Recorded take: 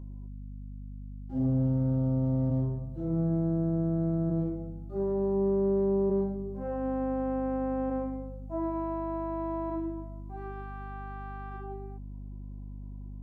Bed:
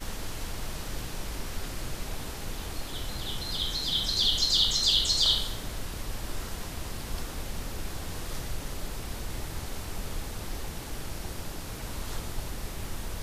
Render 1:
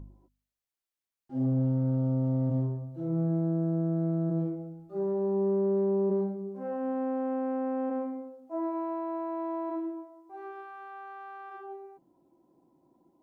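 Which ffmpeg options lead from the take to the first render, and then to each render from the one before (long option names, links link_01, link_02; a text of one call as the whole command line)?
ffmpeg -i in.wav -af "bandreject=frequency=50:width_type=h:width=4,bandreject=frequency=100:width_type=h:width=4,bandreject=frequency=150:width_type=h:width=4,bandreject=frequency=200:width_type=h:width=4,bandreject=frequency=250:width_type=h:width=4" out.wav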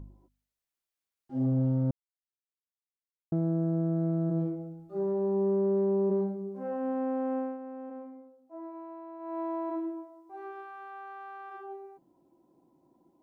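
ffmpeg -i in.wav -filter_complex "[0:a]asplit=5[link_01][link_02][link_03][link_04][link_05];[link_01]atrim=end=1.91,asetpts=PTS-STARTPTS,afade=type=out:start_time=1.906:duration=0.004:curve=hsin[link_06];[link_02]atrim=start=1.91:end=3.32,asetpts=PTS-STARTPTS,volume=0[link_07];[link_03]atrim=start=3.32:end=7.58,asetpts=PTS-STARTPTS,afade=type=in:duration=0.004:curve=hsin,afade=type=out:start_time=4.06:duration=0.2:silence=0.298538[link_08];[link_04]atrim=start=7.58:end=9.19,asetpts=PTS-STARTPTS,volume=-10.5dB[link_09];[link_05]atrim=start=9.19,asetpts=PTS-STARTPTS,afade=type=in:duration=0.2:silence=0.298538[link_10];[link_06][link_07][link_08][link_09][link_10]concat=n=5:v=0:a=1" out.wav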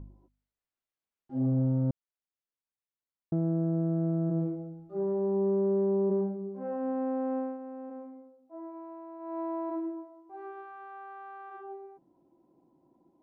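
ffmpeg -i in.wav -af "lowpass=frequency=1800:poles=1" out.wav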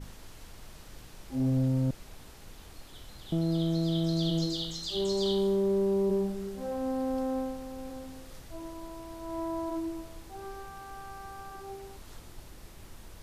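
ffmpeg -i in.wav -i bed.wav -filter_complex "[1:a]volume=-13dB[link_01];[0:a][link_01]amix=inputs=2:normalize=0" out.wav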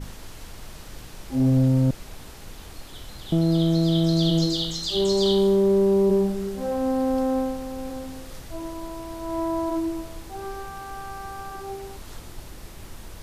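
ffmpeg -i in.wav -af "volume=8dB" out.wav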